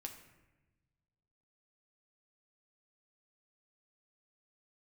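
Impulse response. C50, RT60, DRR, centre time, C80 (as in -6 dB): 8.5 dB, 1.1 s, 3.0 dB, 20 ms, 10.5 dB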